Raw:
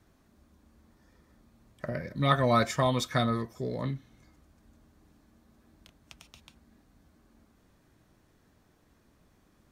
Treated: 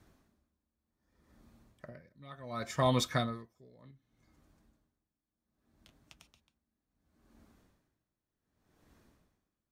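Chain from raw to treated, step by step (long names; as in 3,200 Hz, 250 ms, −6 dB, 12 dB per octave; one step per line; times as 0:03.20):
0:03.91–0:06.20: flanger 1.3 Hz, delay 5.5 ms, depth 3.2 ms, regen −58%
tremolo with a sine in dB 0.67 Hz, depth 26 dB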